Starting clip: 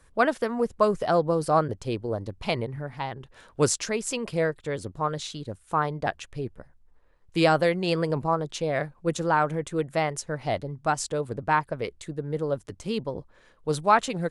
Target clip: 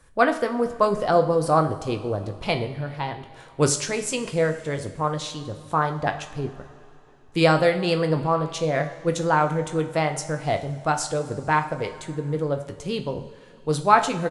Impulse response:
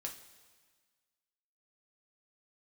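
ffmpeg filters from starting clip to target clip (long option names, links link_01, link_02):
-filter_complex "[0:a]asplit=2[link_01][link_02];[link_02]adelay=20,volume=-12.5dB[link_03];[link_01][link_03]amix=inputs=2:normalize=0,asplit=2[link_04][link_05];[1:a]atrim=start_sample=2205,asetrate=22491,aresample=44100[link_06];[link_05][link_06]afir=irnorm=-1:irlink=0,volume=-4.5dB[link_07];[link_04][link_07]amix=inputs=2:normalize=0,volume=-1.5dB"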